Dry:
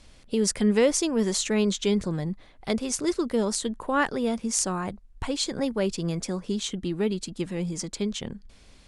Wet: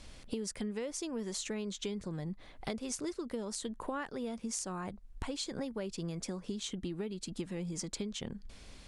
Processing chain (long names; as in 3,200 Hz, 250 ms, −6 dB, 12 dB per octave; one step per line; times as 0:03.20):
downward compressor 12 to 1, threshold −36 dBFS, peak gain reduction 20 dB
level +1 dB